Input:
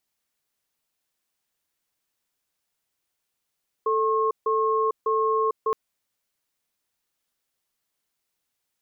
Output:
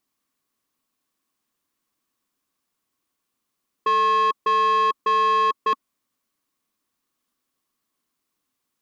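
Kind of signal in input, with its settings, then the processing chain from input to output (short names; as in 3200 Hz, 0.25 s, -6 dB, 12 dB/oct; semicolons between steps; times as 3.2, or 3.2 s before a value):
cadence 441 Hz, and 1080 Hz, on 0.45 s, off 0.15 s, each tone -22.5 dBFS 1.87 s
small resonant body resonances 260/1100 Hz, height 12 dB, ringing for 25 ms; soft clip -16.5 dBFS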